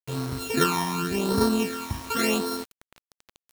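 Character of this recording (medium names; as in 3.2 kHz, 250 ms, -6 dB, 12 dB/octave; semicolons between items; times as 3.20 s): a buzz of ramps at a fixed pitch in blocks of 32 samples; phasing stages 12, 0.89 Hz, lowest notch 450–2600 Hz; a quantiser's noise floor 6-bit, dither none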